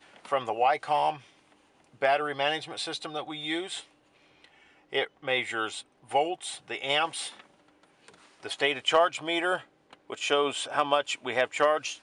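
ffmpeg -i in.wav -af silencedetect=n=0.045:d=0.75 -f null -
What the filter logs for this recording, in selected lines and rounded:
silence_start: 1.10
silence_end: 2.02 | silence_duration: 0.92
silence_start: 3.75
silence_end: 4.95 | silence_duration: 1.19
silence_start: 7.27
silence_end: 8.46 | silence_duration: 1.19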